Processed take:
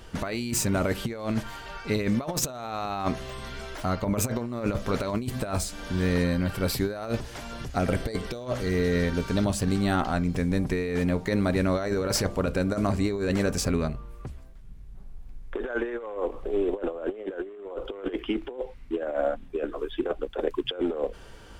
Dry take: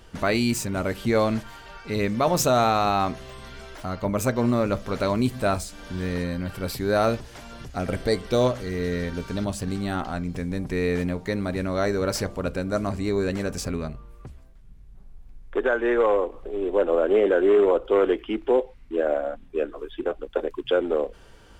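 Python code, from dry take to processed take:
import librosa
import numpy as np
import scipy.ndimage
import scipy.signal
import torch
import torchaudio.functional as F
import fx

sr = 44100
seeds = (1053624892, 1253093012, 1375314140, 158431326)

y = fx.over_compress(x, sr, threshold_db=-26.0, ratio=-0.5)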